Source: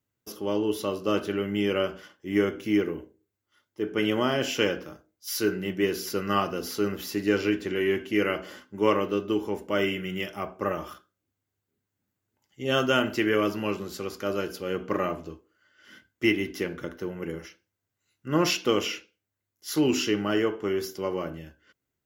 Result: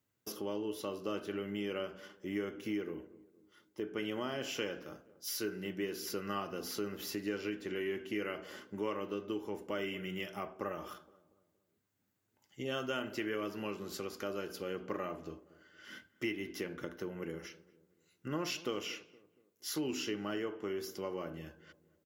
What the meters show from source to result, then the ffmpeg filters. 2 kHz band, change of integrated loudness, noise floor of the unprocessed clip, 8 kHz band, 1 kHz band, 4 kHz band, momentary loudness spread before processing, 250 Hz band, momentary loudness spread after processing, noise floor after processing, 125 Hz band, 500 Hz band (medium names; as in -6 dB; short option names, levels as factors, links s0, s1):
-11.5 dB, -12.0 dB, -84 dBFS, -8.0 dB, -12.0 dB, -11.0 dB, 11 LU, -12.0 dB, 10 LU, -78 dBFS, -12.0 dB, -12.0 dB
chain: -filter_complex "[0:a]lowshelf=f=61:g=-11.5,acompressor=threshold=0.00794:ratio=2.5,asplit=2[s0][s1];[s1]adelay=234,lowpass=f=1000:p=1,volume=0.126,asplit=2[s2][s3];[s3]adelay=234,lowpass=f=1000:p=1,volume=0.45,asplit=2[s4][s5];[s5]adelay=234,lowpass=f=1000:p=1,volume=0.45,asplit=2[s6][s7];[s7]adelay=234,lowpass=f=1000:p=1,volume=0.45[s8];[s0][s2][s4][s6][s8]amix=inputs=5:normalize=0,volume=1.12"